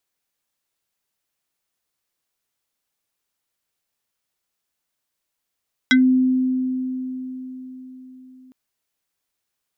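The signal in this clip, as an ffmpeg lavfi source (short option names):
-f lavfi -i "aevalsrc='0.316*pow(10,-3*t/4.52)*sin(2*PI*257*t+2.4*pow(10,-3*t/0.13)*sin(2*PI*6.97*257*t))':d=2.61:s=44100"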